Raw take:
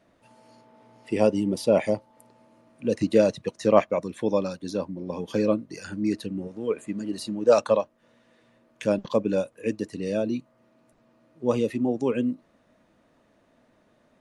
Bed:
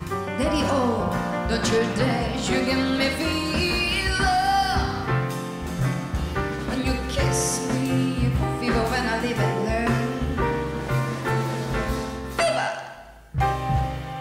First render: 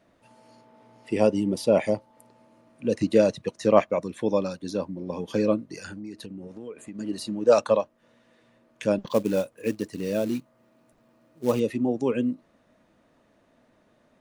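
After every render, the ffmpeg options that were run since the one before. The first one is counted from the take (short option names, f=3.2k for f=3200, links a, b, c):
-filter_complex "[0:a]asettb=1/sr,asplit=3[a][b][c];[a]atrim=end=5.874[d];[b]atrim=start=5.87:end=6.99,asetpts=PTS-STARTPTS,afade=t=in:d=0.004:c=qsin,afade=t=out:st=1.116:d=0.004:c=qsin,acompressor=threshold=-35dB:ratio=6:attack=3.2:release=140:knee=1:detection=peak[e];[c]atrim=start=6.986[f];[d][e]acrossfade=d=0.004:c1=hsin:c2=qsin[g];[g][f]acrossfade=d=0.004:c1=qsin:c2=hsin,asettb=1/sr,asplit=3[h][i][j];[h]atrim=end=9.074[k];[i]atrim=start=9.07:end=11.6,asetpts=PTS-STARTPTS,afade=t=in:d=0.004:c=qsin,afade=t=out:st=2.526:d=0.004:c=qsin,acrusher=bits=5:mode=log:mix=0:aa=0.000001[l];[j]atrim=start=11.596[m];[k][l]acrossfade=d=0.004:c1=hsin:c2=qsin[n];[n][m]acrossfade=d=0.004:c1=qsin:c2=hsin"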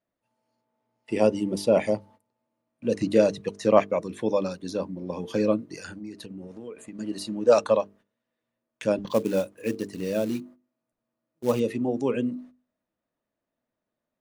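-af "agate=range=-22dB:threshold=-48dB:ratio=16:detection=peak,bandreject=f=50:t=h:w=6,bandreject=f=100:t=h:w=6,bandreject=f=150:t=h:w=6,bandreject=f=200:t=h:w=6,bandreject=f=250:t=h:w=6,bandreject=f=300:t=h:w=6,bandreject=f=350:t=h:w=6,bandreject=f=400:t=h:w=6,bandreject=f=450:t=h:w=6"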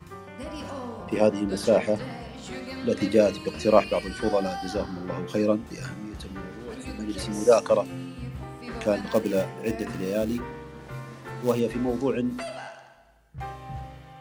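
-filter_complex "[1:a]volume=-14dB[a];[0:a][a]amix=inputs=2:normalize=0"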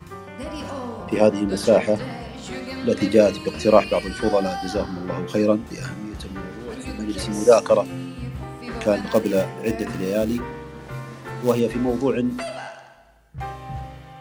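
-af "volume=4.5dB,alimiter=limit=-1dB:level=0:latency=1"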